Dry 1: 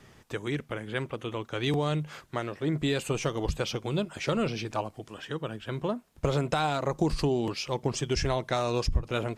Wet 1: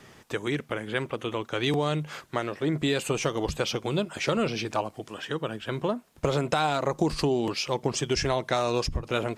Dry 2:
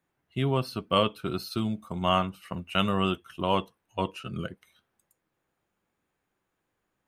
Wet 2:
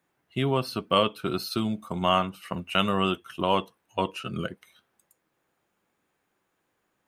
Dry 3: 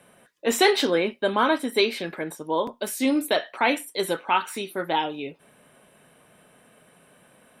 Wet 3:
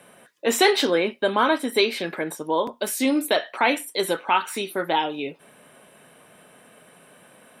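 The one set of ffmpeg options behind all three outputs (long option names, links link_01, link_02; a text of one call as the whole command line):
ffmpeg -i in.wav -filter_complex "[0:a]lowshelf=frequency=100:gain=-11.5,asplit=2[link_01][link_02];[link_02]acompressor=threshold=-30dB:ratio=6,volume=-2dB[link_03];[link_01][link_03]amix=inputs=2:normalize=0" out.wav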